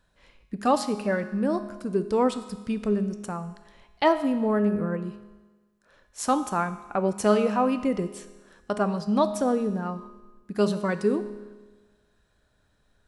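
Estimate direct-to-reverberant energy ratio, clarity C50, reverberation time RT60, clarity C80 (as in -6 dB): 9.5 dB, 11.5 dB, 1.3 s, 13.0 dB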